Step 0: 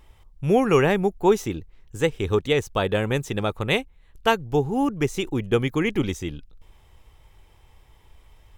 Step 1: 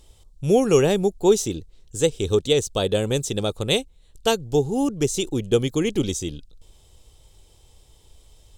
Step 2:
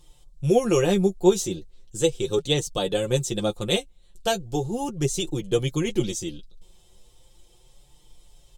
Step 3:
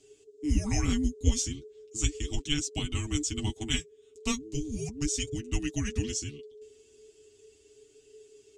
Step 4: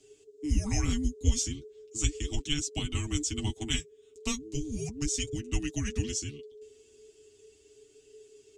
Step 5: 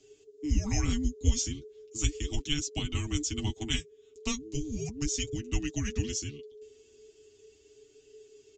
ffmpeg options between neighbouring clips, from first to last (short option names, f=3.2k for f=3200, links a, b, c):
-af "equalizer=f=500:t=o:w=1:g=4,equalizer=f=1k:t=o:w=1:g=-6,equalizer=f=2k:t=o:w=1:g=-10,equalizer=f=4k:t=o:w=1:g=8,equalizer=f=8k:t=o:w=1:g=12"
-af "aecho=1:1:5.7:0.68,flanger=delay=6.6:depth=4.3:regen=24:speed=0.37:shape=sinusoidal"
-af "lowpass=f=7.9k:t=q:w=2.2,afreqshift=-440,volume=-6.5dB"
-filter_complex "[0:a]acrossover=split=140|3000[a][b][c];[b]acompressor=threshold=-31dB:ratio=6[d];[a][d][c]amix=inputs=3:normalize=0"
-af "aresample=16000,aresample=44100"